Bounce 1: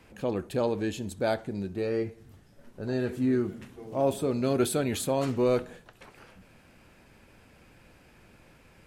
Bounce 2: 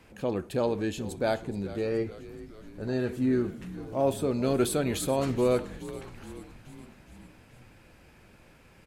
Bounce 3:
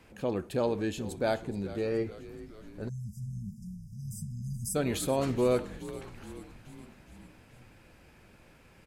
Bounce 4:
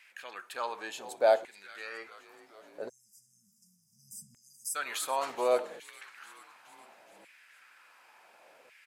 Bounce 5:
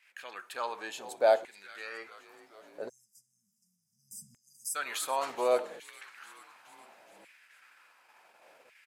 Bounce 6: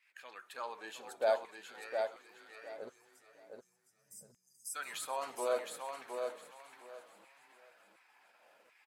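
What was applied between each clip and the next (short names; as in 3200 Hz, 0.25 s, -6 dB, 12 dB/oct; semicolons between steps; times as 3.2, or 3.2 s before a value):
frequency-shifting echo 0.424 s, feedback 61%, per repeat -76 Hz, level -15.5 dB
spectral delete 2.88–4.75, 230–4800 Hz; gain -1.5 dB
LFO high-pass saw down 0.69 Hz 530–2100 Hz
gate -59 dBFS, range -9 dB
bin magnitudes rounded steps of 15 dB; on a send: feedback echo 0.713 s, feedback 21%, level -5 dB; on the sum: gain -6.5 dB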